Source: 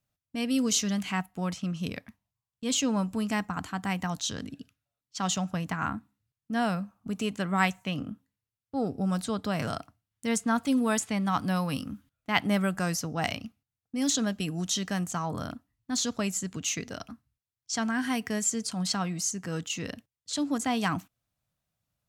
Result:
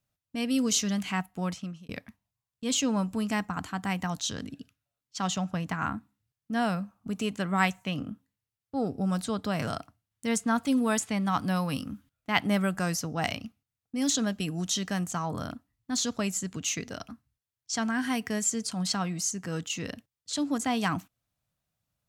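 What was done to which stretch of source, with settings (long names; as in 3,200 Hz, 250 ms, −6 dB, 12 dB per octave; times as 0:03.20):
0:01.48–0:01.89: fade out
0:05.26–0:05.69: high-shelf EQ 4,800 Hz → 9,400 Hz −6.5 dB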